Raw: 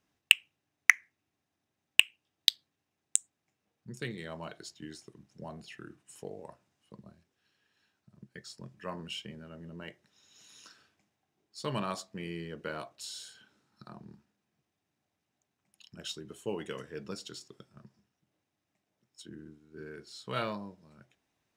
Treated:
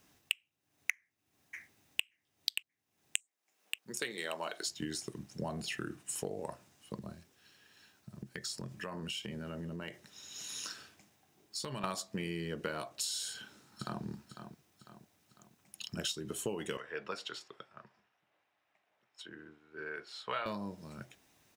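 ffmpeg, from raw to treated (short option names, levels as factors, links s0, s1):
-filter_complex "[0:a]asplit=2[s0][s1];[s1]afade=t=in:st=0.95:d=0.01,afade=t=out:st=2.04:d=0.01,aecho=0:1:580|1160|1740|2320:0.841395|0.252419|0.0757256|0.0227177[s2];[s0][s2]amix=inputs=2:normalize=0,asettb=1/sr,asplit=3[s3][s4][s5];[s3]atrim=end=3.174[s6];[s4]atrim=start=3.17:end=4.67,asetpts=PTS-STARTPTS,afade=t=in:d=0.004:c=qsin,afade=t=out:st=1.496:d=0.004:c=qsin,highpass=430[s7];[s5]atrim=start=4.666[s8];[s6][s7]acrossfade=d=0.004:c1=hsin:c2=qsin[s9];[s9][s8]acrossfade=d=0.004:c1=qsin:c2=hsin,asettb=1/sr,asplit=3[s10][s11][s12];[s10]atrim=end=6.944[s13];[s11]atrim=start=6.94:end=11.84,asetpts=PTS-STARTPTS,afade=t=in:d=0.004:c=qsin,afade=t=out:st=4.896:d=0.004:c=qsin,acompressor=threshold=0.00398:ratio=6:attack=3.2:release=140:knee=1:detection=peak[s14];[s12]atrim=start=11.836[s15];[s13][s14]acrossfade=d=0.004:c1=hsin:c2=qsin[s16];[s16][s15]acrossfade=d=0.004:c1=qsin:c2=hsin,asplit=2[s17][s18];[s18]afade=t=in:st=13.29:d=0.01,afade=t=out:st=14.04:d=0.01,aecho=0:1:500|1000|1500|2000|2500:0.281838|0.126827|0.0570723|0.0256825|0.0115571[s19];[s17][s19]amix=inputs=2:normalize=0,asettb=1/sr,asplit=3[s20][s21][s22];[s20]atrim=end=16.774[s23];[s21]atrim=start=16.77:end=20.46,asetpts=PTS-STARTPTS,afade=t=in:d=0.004:c=qsin,afade=t=out:st=3.686:d=0.004:c=qsin,acrossover=split=550 3100:gain=0.1 1 0.0708[s24][s25][s26];[s24][s25][s26]amix=inputs=3:normalize=0[s27];[s22]atrim=start=20.456[s28];[s23][s27]acrossfade=d=0.004:c1=hsin:c2=qsin[s29];[s29][s28]acrossfade=d=0.004:c1=qsin:c2=hsin,highshelf=f=6500:g=9,acompressor=threshold=0.00631:ratio=8,volume=3.16"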